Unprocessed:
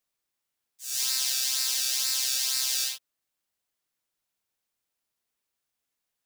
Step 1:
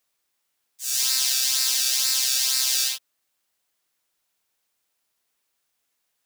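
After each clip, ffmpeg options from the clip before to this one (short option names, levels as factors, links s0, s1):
-filter_complex "[0:a]lowshelf=f=280:g=-6.5,asplit=2[s0][s1];[s1]alimiter=limit=0.0944:level=0:latency=1:release=97,volume=1.19[s2];[s0][s2]amix=inputs=2:normalize=0,volume=1.19"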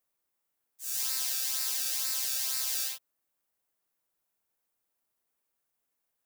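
-af "equalizer=f=4100:w=0.45:g=-10,volume=0.668"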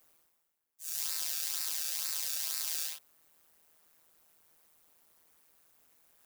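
-af "tremolo=f=160:d=0.857,areverse,acompressor=mode=upward:threshold=0.00398:ratio=2.5,areverse"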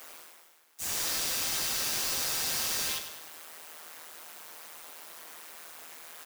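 -filter_complex "[0:a]asplit=2[s0][s1];[s1]highpass=f=720:p=1,volume=63.1,asoftclip=type=tanh:threshold=0.188[s2];[s0][s2]amix=inputs=2:normalize=0,lowpass=f=4700:p=1,volume=0.501,flanger=delay=7.8:depth=2.3:regen=-70:speed=0.48:shape=triangular,asplit=2[s3][s4];[s4]aecho=0:1:100|200|300|400|500:0.335|0.164|0.0804|0.0394|0.0193[s5];[s3][s5]amix=inputs=2:normalize=0"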